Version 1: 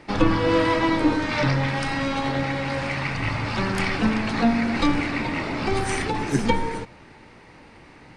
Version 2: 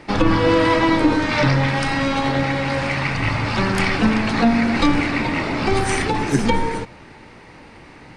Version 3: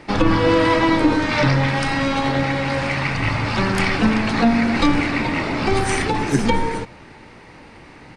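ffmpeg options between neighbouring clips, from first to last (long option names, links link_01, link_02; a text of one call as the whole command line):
ffmpeg -i in.wav -af "alimiter=level_in=10dB:limit=-1dB:release=50:level=0:latency=1,volume=-5dB" out.wav
ffmpeg -i in.wav -af "aresample=32000,aresample=44100" out.wav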